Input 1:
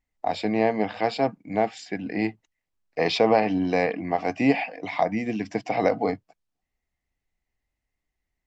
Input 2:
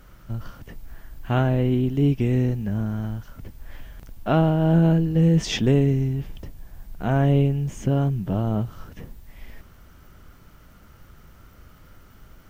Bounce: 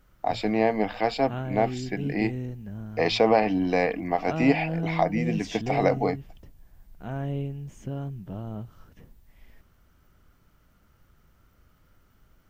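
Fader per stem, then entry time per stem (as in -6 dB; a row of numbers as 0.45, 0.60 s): -0.5, -12.0 dB; 0.00, 0.00 s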